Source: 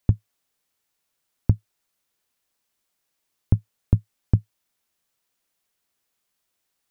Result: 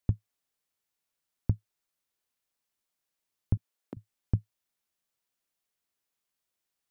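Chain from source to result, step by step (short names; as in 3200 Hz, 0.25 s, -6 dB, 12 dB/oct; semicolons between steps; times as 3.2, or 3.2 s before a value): 3.57–3.97 HPF 260 Hz 24 dB/oct; gain -8.5 dB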